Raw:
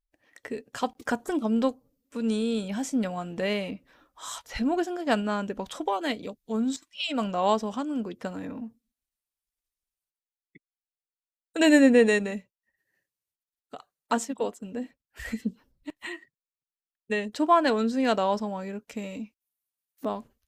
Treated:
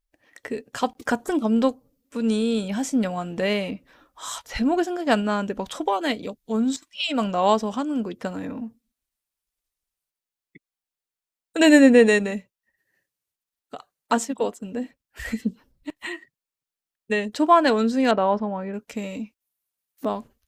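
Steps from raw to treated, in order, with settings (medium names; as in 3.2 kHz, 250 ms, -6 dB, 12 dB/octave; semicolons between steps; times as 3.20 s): 18.11–18.74 s: low-pass 2 kHz 12 dB/octave; trim +4.5 dB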